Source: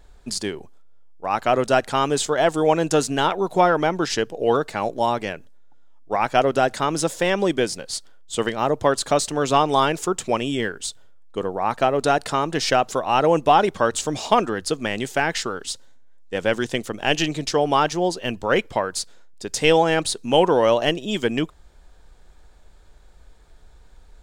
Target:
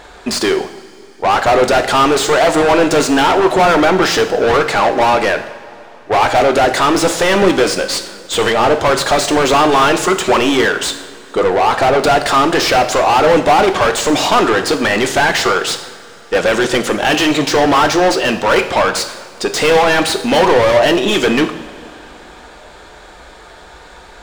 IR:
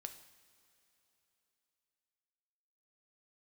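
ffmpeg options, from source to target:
-filter_complex "[0:a]asplit=2[link_01][link_02];[link_02]highpass=frequency=720:poles=1,volume=34dB,asoftclip=type=tanh:threshold=-2.5dB[link_03];[link_01][link_03]amix=inputs=2:normalize=0,lowpass=frequency=2500:poles=1,volume=-6dB[link_04];[1:a]atrim=start_sample=2205[link_05];[link_04][link_05]afir=irnorm=-1:irlink=0,volume=3.5dB"

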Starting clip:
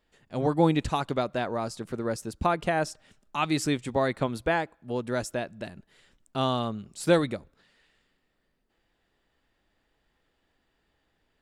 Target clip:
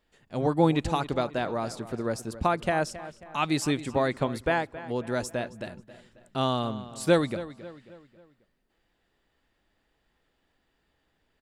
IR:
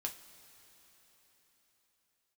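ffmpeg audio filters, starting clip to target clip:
-filter_complex "[0:a]asplit=2[link_01][link_02];[link_02]adelay=270,lowpass=frequency=4300:poles=1,volume=-15dB,asplit=2[link_03][link_04];[link_04]adelay=270,lowpass=frequency=4300:poles=1,volume=0.46,asplit=2[link_05][link_06];[link_06]adelay=270,lowpass=frequency=4300:poles=1,volume=0.46,asplit=2[link_07][link_08];[link_08]adelay=270,lowpass=frequency=4300:poles=1,volume=0.46[link_09];[link_01][link_03][link_05][link_07][link_09]amix=inputs=5:normalize=0"

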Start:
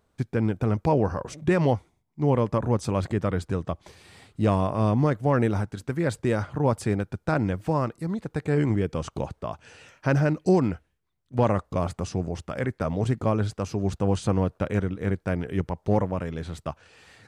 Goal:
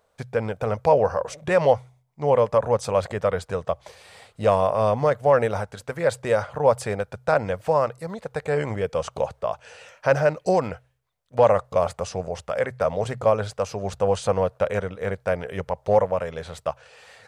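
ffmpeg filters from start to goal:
ffmpeg -i in.wav -af "lowshelf=frequency=410:width_type=q:width=3:gain=-8,bandreject=frequency=63.27:width_type=h:width=4,bandreject=frequency=126.54:width_type=h:width=4,volume=3.5dB" out.wav

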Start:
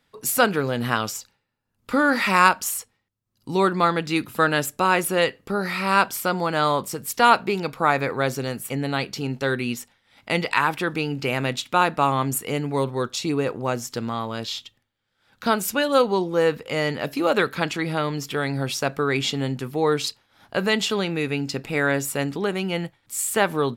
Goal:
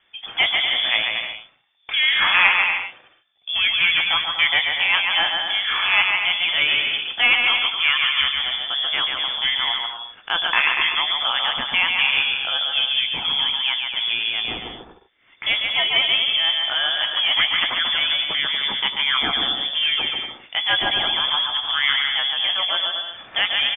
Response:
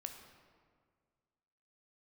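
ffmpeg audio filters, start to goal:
-filter_complex "[0:a]acrossover=split=1200[link_01][link_02];[link_01]asoftclip=type=tanh:threshold=-21dB[link_03];[link_03][link_02]amix=inputs=2:normalize=0,acrusher=bits=6:mode=log:mix=0:aa=0.000001,lowpass=frequency=3100:width_type=q:width=0.5098,lowpass=frequency=3100:width_type=q:width=0.6013,lowpass=frequency=3100:width_type=q:width=0.9,lowpass=frequency=3100:width_type=q:width=2.563,afreqshift=-3600,asplit=2[link_04][link_05];[link_05]adelay=16,volume=-12dB[link_06];[link_04][link_06]amix=inputs=2:normalize=0,asplit=2[link_07][link_08];[link_08]acompressor=threshold=-37dB:ratio=6,volume=-1.5dB[link_09];[link_07][link_09]amix=inputs=2:normalize=0,aecho=1:1:140|238|306.6|354.6|388.2:0.631|0.398|0.251|0.158|0.1,volume=1.5dB"

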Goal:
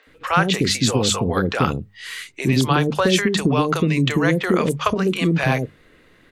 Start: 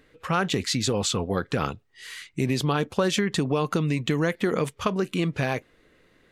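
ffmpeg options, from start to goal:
ffmpeg -i in.wav -filter_complex "[0:a]bandreject=frequency=50:width_type=h:width=6,bandreject=frequency=100:width_type=h:width=6,bandreject=frequency=150:width_type=h:width=6,bandreject=frequency=200:width_type=h:width=6,acrossover=split=500|5900[link_01][link_02][link_03];[link_03]adelay=30[link_04];[link_01]adelay=70[link_05];[link_05][link_02][link_04]amix=inputs=3:normalize=0,volume=8dB" out.wav

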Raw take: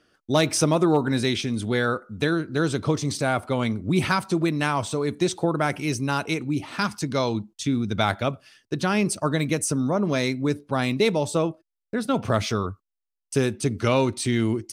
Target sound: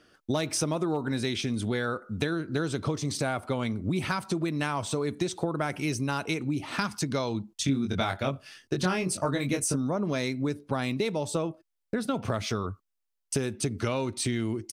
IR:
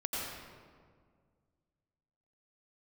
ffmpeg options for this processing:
-filter_complex "[0:a]acompressor=threshold=-29dB:ratio=6,asplit=3[link_01][link_02][link_03];[link_01]afade=type=out:start_time=7.67:duration=0.02[link_04];[link_02]asplit=2[link_05][link_06];[link_06]adelay=22,volume=-3.5dB[link_07];[link_05][link_07]amix=inputs=2:normalize=0,afade=type=in:start_time=7.67:duration=0.02,afade=type=out:start_time=9.75:duration=0.02[link_08];[link_03]afade=type=in:start_time=9.75:duration=0.02[link_09];[link_04][link_08][link_09]amix=inputs=3:normalize=0,volume=3dB"

